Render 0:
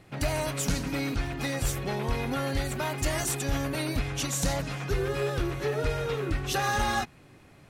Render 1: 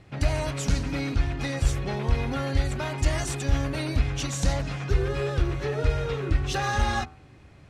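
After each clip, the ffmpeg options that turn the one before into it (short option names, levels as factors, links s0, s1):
-af "lowpass=7200,equalizer=f=65:w=1.1:g=12,bandreject=f=84.68:t=h:w=4,bandreject=f=169.36:t=h:w=4,bandreject=f=254.04:t=h:w=4,bandreject=f=338.72:t=h:w=4,bandreject=f=423.4:t=h:w=4,bandreject=f=508.08:t=h:w=4,bandreject=f=592.76:t=h:w=4,bandreject=f=677.44:t=h:w=4,bandreject=f=762.12:t=h:w=4,bandreject=f=846.8:t=h:w=4,bandreject=f=931.48:t=h:w=4,bandreject=f=1016.16:t=h:w=4,bandreject=f=1100.84:t=h:w=4,bandreject=f=1185.52:t=h:w=4,bandreject=f=1270.2:t=h:w=4,bandreject=f=1354.88:t=h:w=4,bandreject=f=1439.56:t=h:w=4,bandreject=f=1524.24:t=h:w=4"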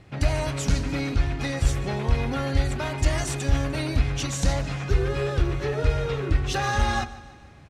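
-af "aecho=1:1:150|300|450|600|750:0.126|0.068|0.0367|0.0198|0.0107,volume=1.19"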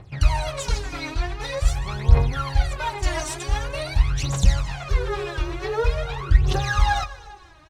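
-af "equalizer=f=250:t=o:w=0.67:g=-10,equalizer=f=1000:t=o:w=0.67:g=6,equalizer=f=4000:t=o:w=0.67:g=3,aecho=1:1:234|468|702|936:0.0794|0.0405|0.0207|0.0105,aphaser=in_gain=1:out_gain=1:delay=3.3:decay=0.77:speed=0.46:type=triangular,volume=0.631"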